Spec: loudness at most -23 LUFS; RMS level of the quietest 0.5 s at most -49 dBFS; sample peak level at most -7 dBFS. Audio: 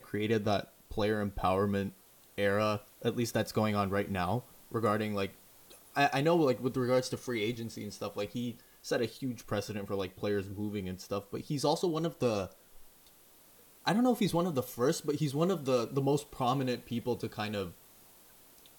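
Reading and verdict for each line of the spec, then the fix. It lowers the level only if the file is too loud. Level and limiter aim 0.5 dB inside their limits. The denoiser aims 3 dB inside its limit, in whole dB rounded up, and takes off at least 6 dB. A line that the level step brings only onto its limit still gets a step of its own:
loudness -33.0 LUFS: OK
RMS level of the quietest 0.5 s -60 dBFS: OK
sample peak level -14.5 dBFS: OK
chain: none

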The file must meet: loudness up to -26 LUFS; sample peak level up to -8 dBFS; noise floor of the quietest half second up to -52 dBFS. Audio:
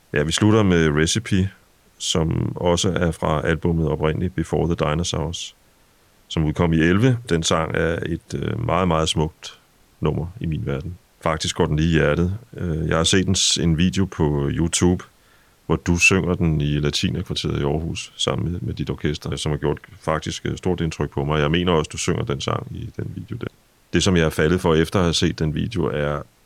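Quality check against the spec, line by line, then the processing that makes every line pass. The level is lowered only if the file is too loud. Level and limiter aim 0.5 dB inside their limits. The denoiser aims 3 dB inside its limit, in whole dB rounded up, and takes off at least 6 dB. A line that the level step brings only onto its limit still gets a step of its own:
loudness -21.0 LUFS: fail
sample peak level -5.0 dBFS: fail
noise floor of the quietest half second -56 dBFS: OK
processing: gain -5.5 dB

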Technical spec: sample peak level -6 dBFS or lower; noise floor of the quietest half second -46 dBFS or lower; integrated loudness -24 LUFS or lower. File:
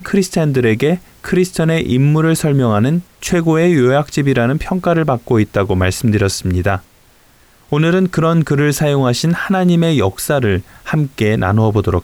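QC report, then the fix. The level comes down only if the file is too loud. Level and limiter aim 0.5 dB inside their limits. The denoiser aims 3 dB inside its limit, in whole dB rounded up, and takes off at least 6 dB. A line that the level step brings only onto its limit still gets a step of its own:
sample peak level -3.5 dBFS: fail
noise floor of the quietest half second -49 dBFS: OK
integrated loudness -14.5 LUFS: fail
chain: gain -10 dB

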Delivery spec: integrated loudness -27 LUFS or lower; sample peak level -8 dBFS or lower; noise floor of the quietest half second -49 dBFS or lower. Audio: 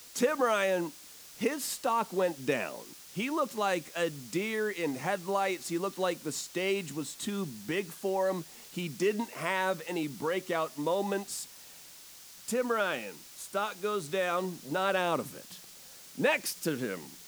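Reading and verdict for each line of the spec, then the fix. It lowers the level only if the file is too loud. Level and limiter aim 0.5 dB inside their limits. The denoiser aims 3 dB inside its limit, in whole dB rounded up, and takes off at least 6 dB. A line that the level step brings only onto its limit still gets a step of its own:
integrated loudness -32.0 LUFS: OK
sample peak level -14.5 dBFS: OK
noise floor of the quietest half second -51 dBFS: OK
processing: none

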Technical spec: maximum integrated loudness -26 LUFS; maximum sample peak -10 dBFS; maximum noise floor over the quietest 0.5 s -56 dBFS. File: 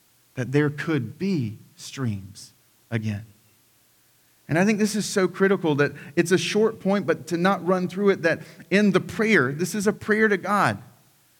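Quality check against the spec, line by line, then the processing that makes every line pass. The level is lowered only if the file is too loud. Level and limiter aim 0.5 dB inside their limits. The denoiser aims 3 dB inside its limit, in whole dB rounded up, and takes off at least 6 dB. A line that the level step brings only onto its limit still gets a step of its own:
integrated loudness -23.0 LUFS: fail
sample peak -5.5 dBFS: fail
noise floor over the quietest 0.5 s -61 dBFS: OK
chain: gain -3.5 dB; limiter -10.5 dBFS

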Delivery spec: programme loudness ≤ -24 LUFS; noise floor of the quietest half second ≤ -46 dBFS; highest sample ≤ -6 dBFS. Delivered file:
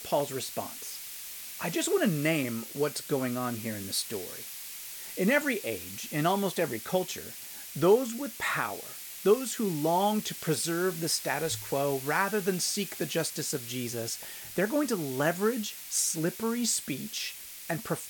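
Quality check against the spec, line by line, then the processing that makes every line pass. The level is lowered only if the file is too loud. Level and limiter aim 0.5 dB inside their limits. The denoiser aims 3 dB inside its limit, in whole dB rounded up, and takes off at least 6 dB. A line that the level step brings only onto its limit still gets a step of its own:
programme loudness -30.0 LUFS: OK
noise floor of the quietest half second -43 dBFS: fail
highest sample -11.5 dBFS: OK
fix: denoiser 6 dB, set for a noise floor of -43 dBFS

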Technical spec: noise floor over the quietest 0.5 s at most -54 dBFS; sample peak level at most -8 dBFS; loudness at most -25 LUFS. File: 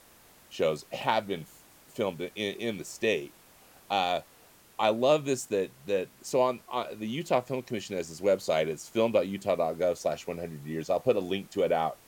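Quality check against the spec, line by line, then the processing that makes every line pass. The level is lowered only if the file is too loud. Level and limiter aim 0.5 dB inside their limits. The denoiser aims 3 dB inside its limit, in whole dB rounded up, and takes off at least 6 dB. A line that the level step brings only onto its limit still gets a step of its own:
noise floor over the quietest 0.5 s -58 dBFS: OK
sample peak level -11.0 dBFS: OK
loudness -30.0 LUFS: OK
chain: none

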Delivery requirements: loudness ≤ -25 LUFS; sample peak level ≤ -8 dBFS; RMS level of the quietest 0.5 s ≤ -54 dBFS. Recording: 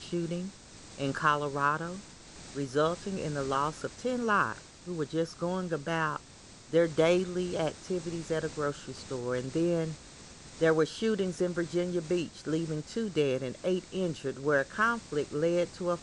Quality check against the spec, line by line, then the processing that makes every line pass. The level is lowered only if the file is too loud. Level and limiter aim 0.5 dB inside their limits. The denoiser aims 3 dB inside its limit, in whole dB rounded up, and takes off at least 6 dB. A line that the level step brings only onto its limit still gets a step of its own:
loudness -31.0 LUFS: OK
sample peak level -12.0 dBFS: OK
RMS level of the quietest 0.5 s -52 dBFS: fail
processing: denoiser 6 dB, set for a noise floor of -52 dBFS

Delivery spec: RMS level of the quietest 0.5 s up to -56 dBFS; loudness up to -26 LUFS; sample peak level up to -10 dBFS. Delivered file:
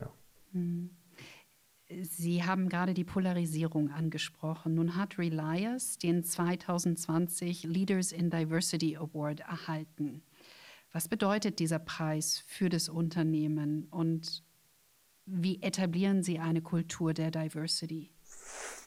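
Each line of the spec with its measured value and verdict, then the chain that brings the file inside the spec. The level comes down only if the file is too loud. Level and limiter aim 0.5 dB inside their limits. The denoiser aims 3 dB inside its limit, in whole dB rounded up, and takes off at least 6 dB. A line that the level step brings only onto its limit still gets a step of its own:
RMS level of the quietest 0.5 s -68 dBFS: OK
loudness -33.5 LUFS: OK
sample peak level -18.0 dBFS: OK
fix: none

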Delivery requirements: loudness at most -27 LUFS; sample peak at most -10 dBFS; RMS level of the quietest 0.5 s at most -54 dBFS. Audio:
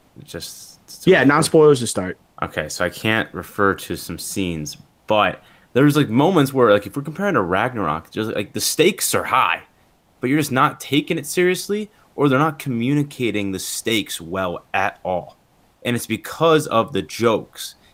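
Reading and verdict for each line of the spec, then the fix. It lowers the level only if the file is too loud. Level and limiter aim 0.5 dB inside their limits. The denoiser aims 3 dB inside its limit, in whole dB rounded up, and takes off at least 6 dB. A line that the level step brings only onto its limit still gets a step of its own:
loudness -19.5 LUFS: fail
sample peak -3.0 dBFS: fail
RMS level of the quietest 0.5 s -57 dBFS: OK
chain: gain -8 dB

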